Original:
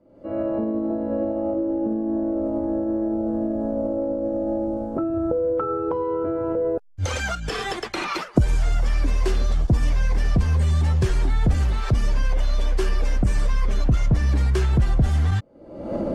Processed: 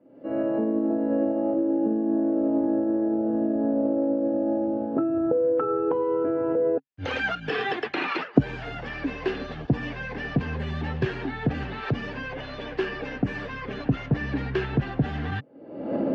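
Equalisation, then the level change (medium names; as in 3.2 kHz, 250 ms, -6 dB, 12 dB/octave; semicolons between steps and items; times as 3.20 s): cabinet simulation 140–4100 Hz, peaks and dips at 140 Hz +7 dB, 270 Hz +10 dB, 440 Hz +7 dB, 780 Hz +5 dB, 1.7 kHz +9 dB, 2.7 kHz +7 dB; -4.5 dB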